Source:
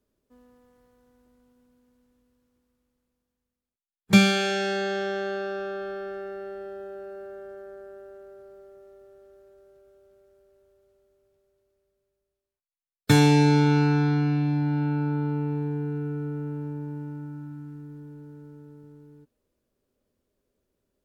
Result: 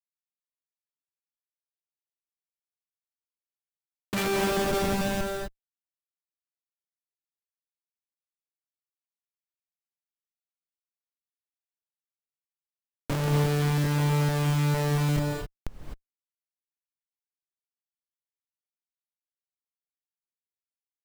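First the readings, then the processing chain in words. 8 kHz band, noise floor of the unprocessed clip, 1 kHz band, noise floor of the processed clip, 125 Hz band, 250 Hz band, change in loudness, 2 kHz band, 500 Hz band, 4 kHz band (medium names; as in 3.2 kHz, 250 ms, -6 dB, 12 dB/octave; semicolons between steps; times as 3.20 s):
-0.5 dB, under -85 dBFS, -3.0 dB, under -85 dBFS, -2.5 dB, -7.5 dB, -2.0 dB, -5.5 dB, -3.0 dB, -5.5 dB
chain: doubling 28 ms -7 dB; Schmitt trigger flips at -21 dBFS; gated-style reverb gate 280 ms rising, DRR 1 dB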